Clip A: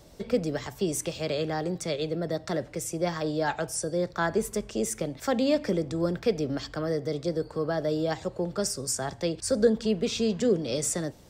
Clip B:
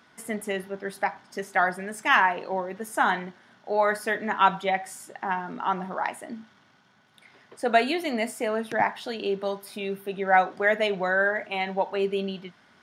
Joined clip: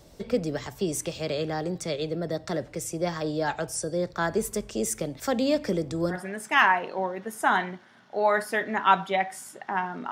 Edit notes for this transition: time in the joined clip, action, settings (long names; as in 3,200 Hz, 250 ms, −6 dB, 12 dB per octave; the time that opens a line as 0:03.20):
clip A
0:04.20–0:06.21: high-shelf EQ 8,000 Hz +5.5 dB
0:06.15: continue with clip B from 0:01.69, crossfade 0.12 s